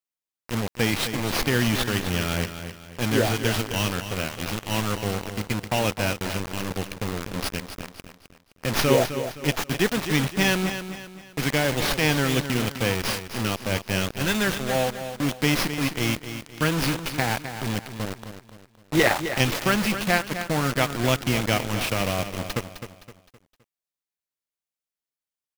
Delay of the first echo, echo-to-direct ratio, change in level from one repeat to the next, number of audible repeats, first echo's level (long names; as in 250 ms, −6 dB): 259 ms, −9.5 dB, −8.0 dB, 4, −10.0 dB